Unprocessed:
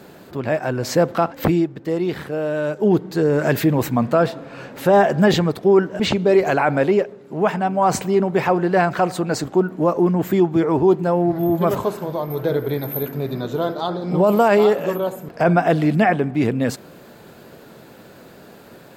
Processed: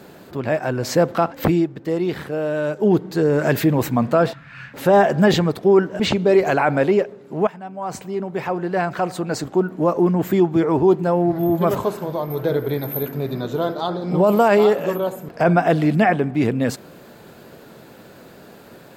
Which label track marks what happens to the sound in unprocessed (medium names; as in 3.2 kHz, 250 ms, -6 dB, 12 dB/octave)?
4.330000	4.740000	FFT filter 140 Hz 0 dB, 290 Hz -19 dB, 480 Hz -26 dB, 1.8 kHz +6 dB, 3.8 kHz -3 dB, 8.7 kHz -9 dB
7.470000	10.010000	fade in linear, from -16 dB